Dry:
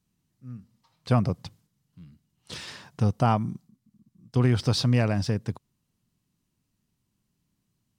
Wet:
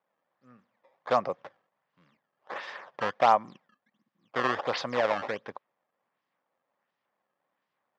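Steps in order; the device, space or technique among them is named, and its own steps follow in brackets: circuit-bent sampling toy (decimation with a swept rate 17×, swing 160% 1.4 Hz; cabinet simulation 530–4300 Hz, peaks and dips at 550 Hz +9 dB, 800 Hz +5 dB, 1.1 kHz +6 dB, 1.8 kHz +5 dB, 2.8 kHz -3 dB, 4.1 kHz -6 dB)

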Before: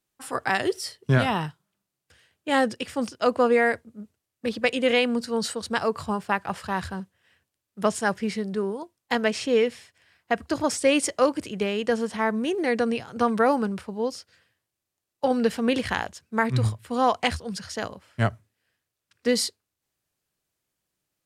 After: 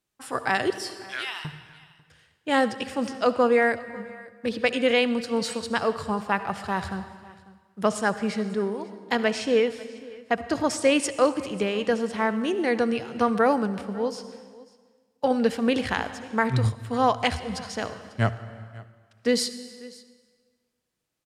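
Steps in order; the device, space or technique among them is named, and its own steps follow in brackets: 0.70–1.45 s: Chebyshev high-pass 2.2 kHz, order 2; treble shelf 11 kHz -7.5 dB; compressed reverb return (on a send at -9.5 dB: reverberation RT60 1.5 s, pre-delay 61 ms + compression, threshold -24 dBFS, peak gain reduction 10 dB); on the sum: delay 545 ms -21.5 dB

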